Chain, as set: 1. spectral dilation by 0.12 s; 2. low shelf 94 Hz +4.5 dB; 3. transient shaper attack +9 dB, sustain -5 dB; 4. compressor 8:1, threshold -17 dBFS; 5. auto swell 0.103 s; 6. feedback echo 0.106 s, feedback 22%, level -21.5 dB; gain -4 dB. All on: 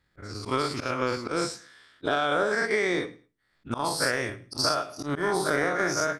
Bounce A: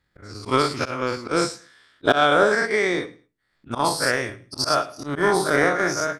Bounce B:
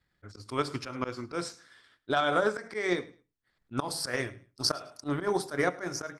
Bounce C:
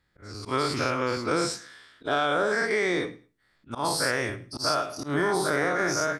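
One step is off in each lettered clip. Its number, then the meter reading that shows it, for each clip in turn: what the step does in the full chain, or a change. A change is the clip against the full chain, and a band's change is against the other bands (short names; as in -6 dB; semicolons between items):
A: 4, mean gain reduction 4.0 dB; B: 1, 2 kHz band -2.5 dB; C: 3, momentary loudness spread change +1 LU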